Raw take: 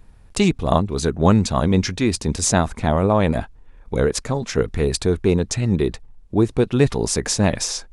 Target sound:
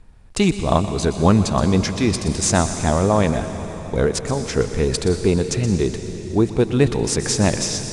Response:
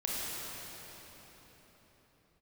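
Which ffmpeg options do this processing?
-filter_complex "[0:a]asplit=2[s0][s1];[1:a]atrim=start_sample=2205,highshelf=f=3700:g=8.5,adelay=123[s2];[s1][s2]afir=irnorm=-1:irlink=0,volume=0.15[s3];[s0][s3]amix=inputs=2:normalize=0" -ar 22050 -c:a adpcm_ima_wav

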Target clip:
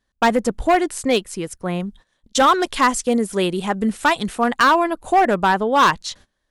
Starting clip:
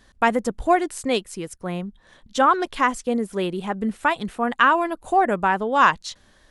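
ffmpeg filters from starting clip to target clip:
-filter_complex "[0:a]agate=range=0.0708:threshold=0.00501:ratio=16:detection=peak,asettb=1/sr,asplit=3[s0][s1][s2];[s0]atrim=end=1.804[s3];[s1]atrim=start=1.8:end=4.51,asetpts=PTS-STARTPTS,afade=t=in:d=0.004:c=qsin,afade=t=out:st=2.706:d=0.004:c=qsin,equalizer=f=8300:t=o:w=2.2:g=7.5[s4];[s2]atrim=start=4.506[s5];[s3][s4]acrossfade=d=0.004:c1=hsin:c2=qsin[s6];[s6][s5]acrossfade=d=0.004:c1=qsin:c2=hsin,asoftclip=type=hard:threshold=0.2,volume=1.68"

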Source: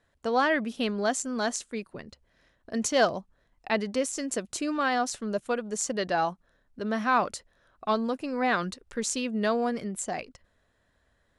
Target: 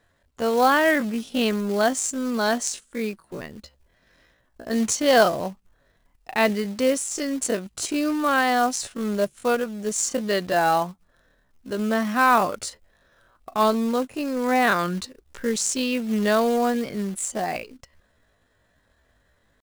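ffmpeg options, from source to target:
-af "acrusher=bits=4:mode=log:mix=0:aa=0.000001,atempo=0.58,volume=1.88"

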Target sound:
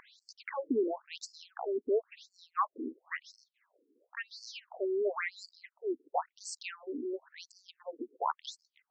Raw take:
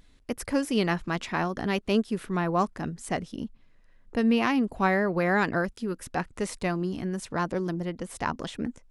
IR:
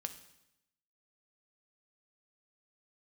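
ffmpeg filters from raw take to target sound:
-af "acompressor=mode=upward:threshold=0.0178:ratio=2.5,afftfilt=real='re*between(b*sr/1024,310*pow(6100/310,0.5+0.5*sin(2*PI*0.96*pts/sr))/1.41,310*pow(6100/310,0.5+0.5*sin(2*PI*0.96*pts/sr))*1.41)':imag='im*between(b*sr/1024,310*pow(6100/310,0.5+0.5*sin(2*PI*0.96*pts/sr))/1.41,310*pow(6100/310,0.5+0.5*sin(2*PI*0.96*pts/sr))*1.41)':win_size=1024:overlap=0.75"

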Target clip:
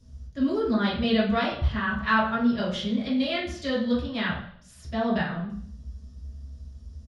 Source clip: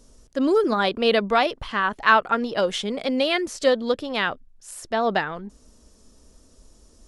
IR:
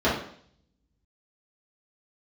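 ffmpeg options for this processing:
-filter_complex "[0:a]firequalizer=gain_entry='entry(100,0);entry(310,-27);entry(1900,-17);entry(4800,-13)':delay=0.05:min_phase=1[s0];[1:a]atrim=start_sample=2205[s1];[s0][s1]afir=irnorm=-1:irlink=0,volume=0.75"

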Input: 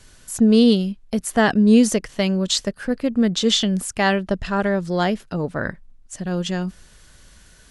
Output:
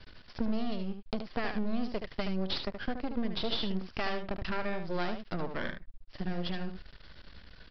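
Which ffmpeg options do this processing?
-af "acompressor=threshold=0.0447:ratio=4,aresample=11025,aeval=exprs='max(val(0),0)':c=same,aresample=44100,aecho=1:1:74:0.422"

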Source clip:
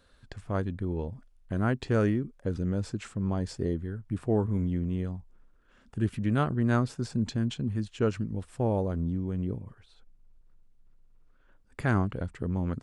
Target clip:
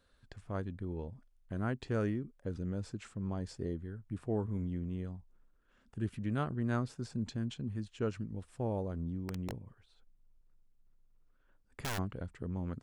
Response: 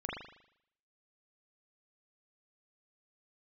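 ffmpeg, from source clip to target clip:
-filter_complex "[0:a]asplit=3[s0][s1][s2];[s0]afade=t=out:st=9.23:d=0.02[s3];[s1]aeval=exprs='(mod(14.1*val(0)+1,2)-1)/14.1':c=same,afade=t=in:st=9.23:d=0.02,afade=t=out:st=11.97:d=0.02[s4];[s2]afade=t=in:st=11.97:d=0.02[s5];[s3][s4][s5]amix=inputs=3:normalize=0,volume=0.398"

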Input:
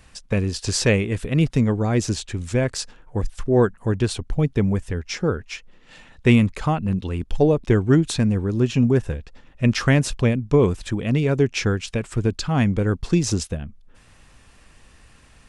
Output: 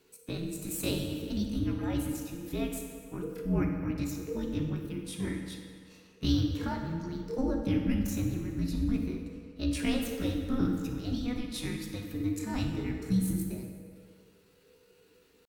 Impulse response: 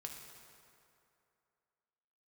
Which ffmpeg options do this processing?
-filter_complex "[0:a]bandreject=f=50:t=h:w=6,bandreject=f=100:t=h:w=6,asetrate=78577,aresample=44100,atempo=0.561231,afreqshift=-500[s0];[1:a]atrim=start_sample=2205,asetrate=57330,aresample=44100[s1];[s0][s1]afir=irnorm=-1:irlink=0,volume=0.501"

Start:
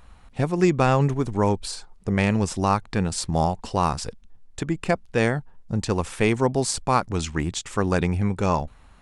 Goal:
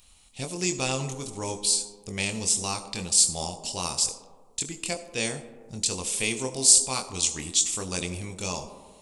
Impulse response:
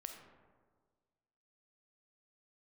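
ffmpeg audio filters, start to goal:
-filter_complex "[0:a]aexciter=amount=10.4:drive=2.4:freq=2400,asplit=2[s0][s1];[s1]equalizer=f=125:t=o:w=1:g=-3,equalizer=f=250:t=o:w=1:g=11,equalizer=f=500:t=o:w=1:g=11,equalizer=f=1000:t=o:w=1:g=8,equalizer=f=8000:t=o:w=1:g=10[s2];[1:a]atrim=start_sample=2205,highshelf=f=4600:g=10.5,adelay=23[s3];[s2][s3]afir=irnorm=-1:irlink=0,volume=0.316[s4];[s0][s4]amix=inputs=2:normalize=0,volume=0.211"

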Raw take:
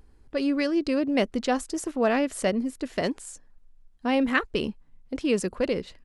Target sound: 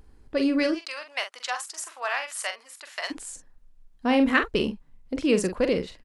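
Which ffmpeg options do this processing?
-filter_complex "[0:a]asplit=3[s0][s1][s2];[s0]afade=t=out:st=0.73:d=0.02[s3];[s1]highpass=f=900:w=0.5412,highpass=f=900:w=1.3066,afade=t=in:st=0.73:d=0.02,afade=t=out:st=3.1:d=0.02[s4];[s2]afade=t=in:st=3.1:d=0.02[s5];[s3][s4][s5]amix=inputs=3:normalize=0,asplit=2[s6][s7];[s7]adelay=44,volume=0.376[s8];[s6][s8]amix=inputs=2:normalize=0,volume=1.26"

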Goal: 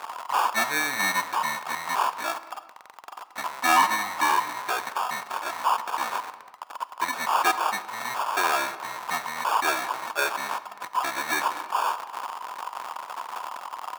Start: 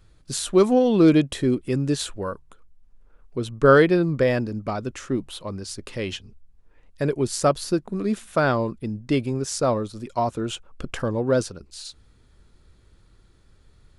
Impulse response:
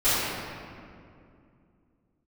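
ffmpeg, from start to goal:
-filter_complex "[0:a]aeval=exprs='val(0)+0.5*0.0562*sgn(val(0))':c=same,acrusher=bits=6:mode=log:mix=0:aa=0.000001,asuperstop=centerf=1500:order=20:qfactor=4.3,asetrate=26222,aresample=44100,atempo=1.68179,acrusher=samples=22:mix=1:aa=0.000001,highpass=f=980:t=q:w=5.7,asplit=2[s0][s1];[1:a]atrim=start_sample=2205,afade=t=out:st=0.42:d=0.01,atrim=end_sample=18963[s2];[s1][s2]afir=irnorm=-1:irlink=0,volume=0.0335[s3];[s0][s3]amix=inputs=2:normalize=0,asoftclip=type=tanh:threshold=0.282"

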